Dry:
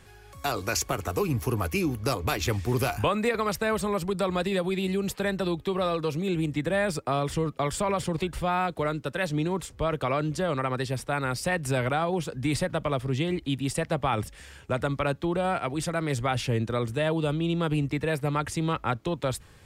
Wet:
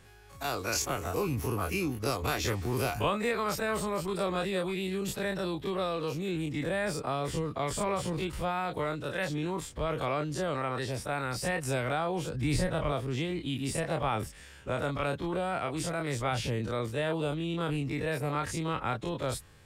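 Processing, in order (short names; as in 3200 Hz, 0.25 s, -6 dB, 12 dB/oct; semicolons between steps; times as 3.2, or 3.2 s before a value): spectral dilation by 60 ms; 12.27–12.92 low shelf 110 Hz +11.5 dB; gain -7.5 dB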